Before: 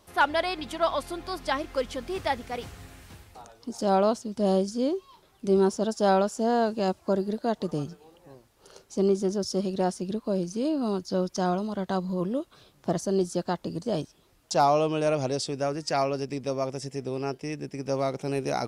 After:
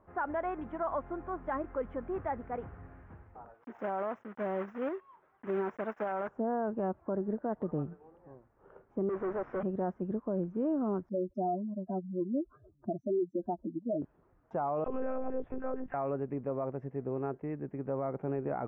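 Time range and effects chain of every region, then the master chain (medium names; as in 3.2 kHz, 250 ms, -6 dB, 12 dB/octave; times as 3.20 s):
3.54–6.29 s: block-companded coder 3-bit + tilt EQ +4 dB/octave
9.09–9.63 s: high-pass 1 kHz 6 dB/octave + overdrive pedal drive 34 dB, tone 2.8 kHz, clips at -22.5 dBFS + distance through air 50 m
11.09–14.02 s: spectral contrast enhancement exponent 3.3 + comb 3.1 ms, depth 71%
14.84–15.94 s: phase dispersion lows, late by 44 ms, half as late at 870 Hz + monotone LPC vocoder at 8 kHz 260 Hz
whole clip: inverse Chebyshev low-pass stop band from 4.1 kHz, stop band 50 dB; peak limiter -21.5 dBFS; trim -3.5 dB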